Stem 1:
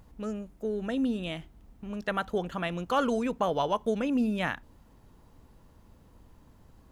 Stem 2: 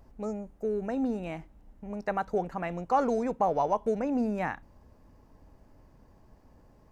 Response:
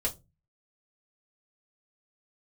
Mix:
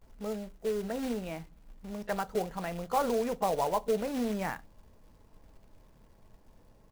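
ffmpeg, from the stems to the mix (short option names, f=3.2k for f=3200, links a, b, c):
-filter_complex "[0:a]volume=-18.5dB[a];[1:a]acrusher=bits=3:mode=log:mix=0:aa=0.000001,adelay=16,volume=-4.5dB,asplit=2[b][c];[c]volume=-14dB[d];[2:a]atrim=start_sample=2205[e];[d][e]afir=irnorm=-1:irlink=0[f];[a][b][f]amix=inputs=3:normalize=0"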